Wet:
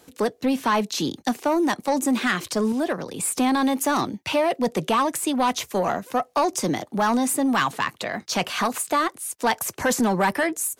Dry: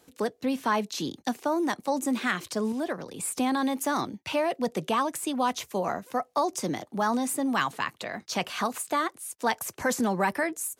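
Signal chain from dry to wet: soft clip -20 dBFS, distortion -17 dB; gain +7 dB

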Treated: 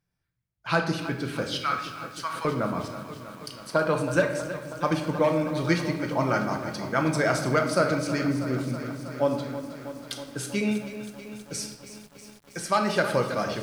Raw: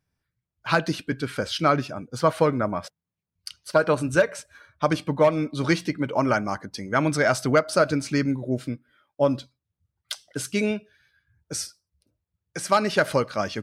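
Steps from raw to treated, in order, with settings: 1.51–2.45 inverse Chebyshev high-pass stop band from 230 Hz, stop band 70 dB; shoebox room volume 430 m³, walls mixed, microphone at 0.82 m; lo-fi delay 0.321 s, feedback 80%, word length 7-bit, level -12.5 dB; gain -4 dB

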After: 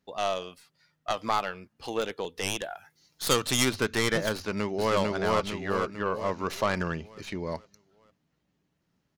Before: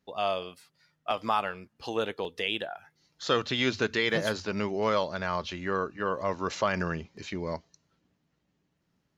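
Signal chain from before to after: tracing distortion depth 0.14 ms; 2.62–3.65 high shelf 5400 Hz +12 dB; 4.33–4.95 echo throw 0.45 s, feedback 50%, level -0.5 dB

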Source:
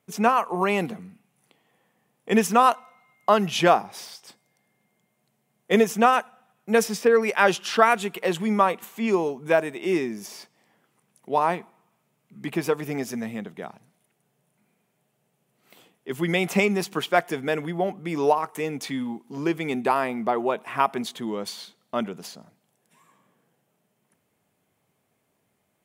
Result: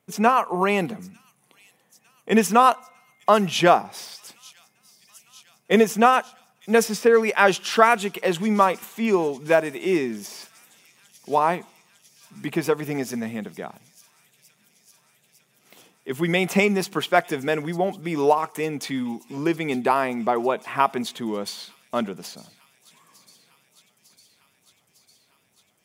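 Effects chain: thin delay 0.903 s, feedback 76%, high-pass 5100 Hz, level -14.5 dB; gain +2 dB

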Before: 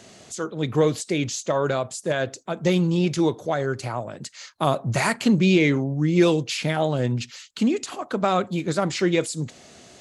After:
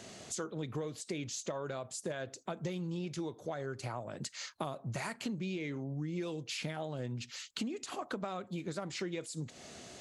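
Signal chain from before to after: compressor 10:1, threshold -33 dBFS, peak gain reduction 20.5 dB; gain -2.5 dB

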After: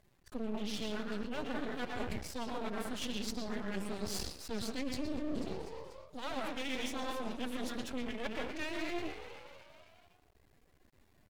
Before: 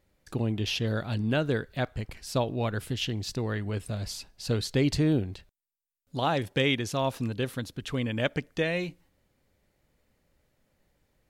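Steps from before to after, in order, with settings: on a send at -1 dB: reverb RT60 0.50 s, pre-delay 0.111 s; on the sum: formant-preserving pitch shift +11.5 st; dynamic EQ 7300 Hz, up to +4 dB, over -52 dBFS, Q 0.98; frequency-shifting echo 0.245 s, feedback 58%, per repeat +76 Hz, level -20.5 dB; reverse; compressor 10:1, threshold -36 dBFS, peak gain reduction 16.5 dB; reverse; half-wave rectifier; gain +4.5 dB

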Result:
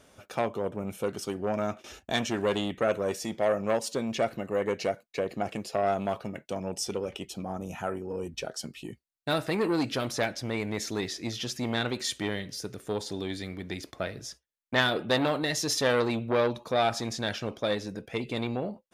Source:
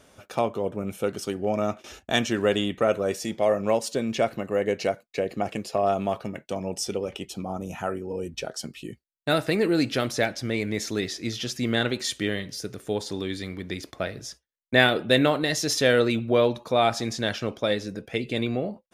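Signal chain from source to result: core saturation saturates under 1700 Hz; gain -2.5 dB

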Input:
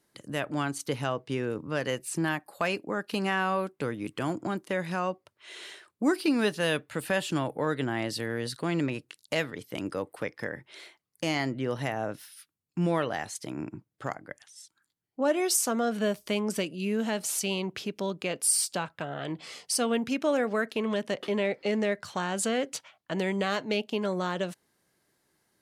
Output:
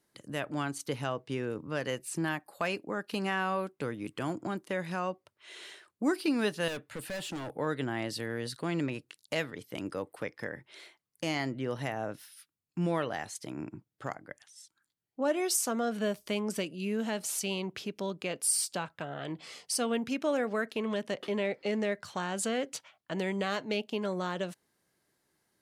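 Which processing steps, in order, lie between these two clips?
6.68–7.57 hard clip -31 dBFS, distortion -18 dB; gain -3.5 dB

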